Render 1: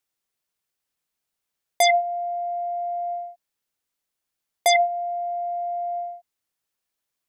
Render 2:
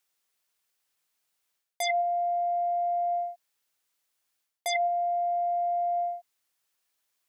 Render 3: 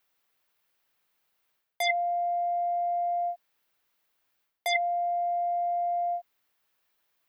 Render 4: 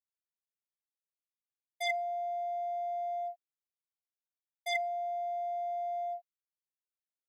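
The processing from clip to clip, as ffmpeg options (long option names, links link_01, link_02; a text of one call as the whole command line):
ffmpeg -i in.wav -af "lowshelf=frequency=440:gain=-9.5,areverse,acompressor=threshold=-30dB:ratio=10,areverse,volume=5dB" out.wav
ffmpeg -i in.wav -filter_complex "[0:a]equalizer=frequency=8100:width_type=o:width=1.7:gain=-12.5,acrossover=split=1500|2500|6400[link_01][link_02][link_03][link_04];[link_01]alimiter=level_in=9dB:limit=-24dB:level=0:latency=1,volume=-9dB[link_05];[link_05][link_02][link_03][link_04]amix=inputs=4:normalize=0,volume=7dB" out.wav
ffmpeg -i in.wav -filter_complex "[0:a]agate=range=-33dB:threshold=-25dB:ratio=3:detection=peak,asplit=2[link_01][link_02];[link_02]asoftclip=type=hard:threshold=-31dB,volume=-5.5dB[link_03];[link_01][link_03]amix=inputs=2:normalize=0,volume=-7dB" out.wav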